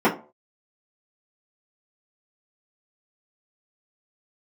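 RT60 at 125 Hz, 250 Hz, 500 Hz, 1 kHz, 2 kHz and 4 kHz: 0.35, 0.35, 0.40, 0.35, 0.25, 0.20 s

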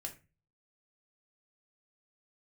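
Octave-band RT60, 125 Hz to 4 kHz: 0.60, 0.40, 0.30, 0.25, 0.30, 0.20 s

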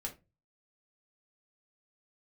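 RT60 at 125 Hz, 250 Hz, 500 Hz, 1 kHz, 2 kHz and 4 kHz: 0.60, 0.35, 0.30, 0.25, 0.20, 0.20 s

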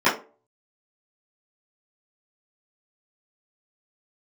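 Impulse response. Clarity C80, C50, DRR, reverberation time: 16.0 dB, 10.0 dB, -13.5 dB, 0.35 s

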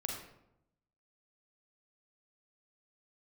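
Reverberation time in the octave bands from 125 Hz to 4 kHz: 1.1, 1.0, 0.85, 0.80, 0.60, 0.50 s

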